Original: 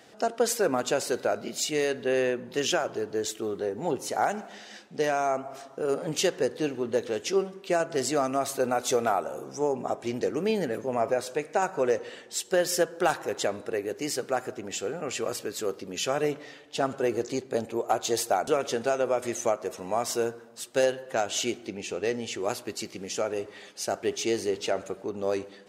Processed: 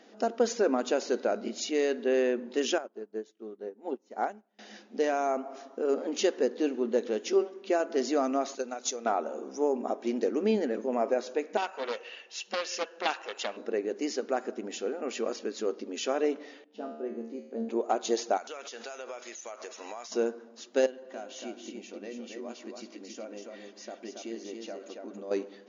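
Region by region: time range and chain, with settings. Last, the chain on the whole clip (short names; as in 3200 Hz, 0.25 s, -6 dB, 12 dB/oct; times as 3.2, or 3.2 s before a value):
2.78–4.59 high shelf 4100 Hz -6.5 dB + upward expander 2.5:1, over -42 dBFS
8.55–9.06 pre-emphasis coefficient 0.8 + transient shaper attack +11 dB, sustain +1 dB + mismatched tape noise reduction encoder only
11.57–13.57 HPF 770 Hz + bell 2700 Hz +14.5 dB 0.21 oct + Doppler distortion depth 0.34 ms
16.64–17.69 RIAA curve playback + resonator 76 Hz, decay 0.82 s, mix 90%
18.37–20.12 tilt +4.5 dB/oct + compressor 12:1, threshold -35 dBFS + overdrive pedal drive 9 dB, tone 4100 Hz, clips at -20 dBFS
20.86–25.31 notch comb 430 Hz + compressor 2:1, threshold -44 dBFS + echo 0.278 s -4.5 dB
whole clip: low shelf 410 Hz +10 dB; FFT band-pass 200–7100 Hz; gain -5 dB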